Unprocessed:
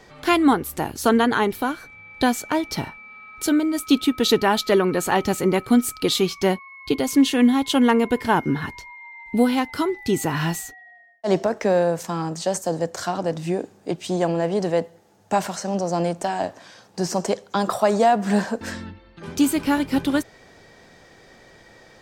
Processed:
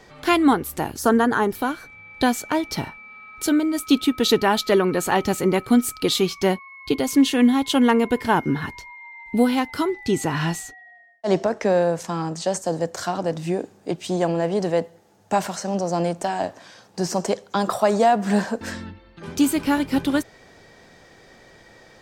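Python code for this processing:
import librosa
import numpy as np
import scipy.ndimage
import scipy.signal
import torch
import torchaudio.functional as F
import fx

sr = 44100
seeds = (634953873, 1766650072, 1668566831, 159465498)

y = fx.spec_box(x, sr, start_s=0.99, length_s=0.56, low_hz=1900.0, high_hz=4600.0, gain_db=-8)
y = fx.lowpass(y, sr, hz=10000.0, slope=12, at=(9.93, 12.68))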